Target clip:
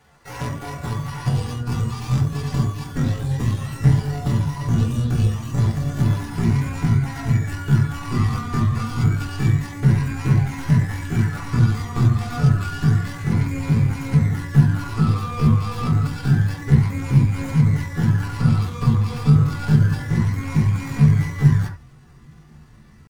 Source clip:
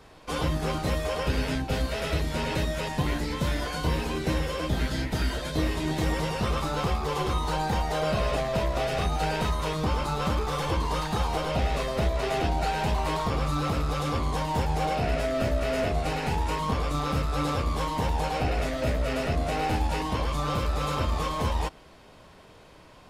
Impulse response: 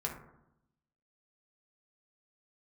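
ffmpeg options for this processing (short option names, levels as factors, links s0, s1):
-filter_complex "[0:a]bandreject=f=279.4:t=h:w=4,bandreject=f=558.8:t=h:w=4,bandreject=f=838.2:t=h:w=4,bandreject=f=1117.6:t=h:w=4,bandreject=f=1397:t=h:w=4,bandreject=f=1676.4:t=h:w=4,bandreject=f=1955.8:t=h:w=4,bandreject=f=2235.2:t=h:w=4,bandreject=f=2514.6:t=h:w=4,bandreject=f=2794:t=h:w=4,bandreject=f=3073.4:t=h:w=4,bandreject=f=3352.8:t=h:w=4,bandreject=f=3632.2:t=h:w=4,bandreject=f=3911.6:t=h:w=4,bandreject=f=4191:t=h:w=4,bandreject=f=4470.4:t=h:w=4,bandreject=f=4749.8:t=h:w=4,bandreject=f=5029.2:t=h:w=4,bandreject=f=5308.6:t=h:w=4,bandreject=f=5588:t=h:w=4,bandreject=f=5867.4:t=h:w=4,bandreject=f=6146.8:t=h:w=4,bandreject=f=6426.2:t=h:w=4,bandreject=f=6705.6:t=h:w=4,bandreject=f=6985:t=h:w=4,bandreject=f=7264.4:t=h:w=4,bandreject=f=7543.8:t=h:w=4,bandreject=f=7823.2:t=h:w=4,bandreject=f=8102.6:t=h:w=4,bandreject=f=8382:t=h:w=4,bandreject=f=8661.4:t=h:w=4,bandreject=f=8940.8:t=h:w=4,bandreject=f=9220.2:t=h:w=4,bandreject=f=9499.6:t=h:w=4,bandreject=f=9779:t=h:w=4,bandreject=f=10058.4:t=h:w=4,bandreject=f=10337.8:t=h:w=4,bandreject=f=10617.2:t=h:w=4,aeval=exprs='0.224*(cos(1*acos(clip(val(0)/0.224,-1,1)))-cos(1*PI/2))+0.0447*(cos(2*acos(clip(val(0)/0.224,-1,1)))-cos(2*PI/2))+0.0355*(cos(3*acos(clip(val(0)/0.224,-1,1)))-cos(3*PI/2))+0.00251*(cos(4*acos(clip(val(0)/0.224,-1,1)))-cos(4*PI/2))+0.00141*(cos(6*acos(clip(val(0)/0.224,-1,1)))-cos(6*PI/2))':c=same,asubboost=boost=6.5:cutoff=120,asetrate=80880,aresample=44100,atempo=0.545254[s0];[1:a]atrim=start_sample=2205,atrim=end_sample=3969,asetrate=43659,aresample=44100[s1];[s0][s1]afir=irnorm=-1:irlink=0"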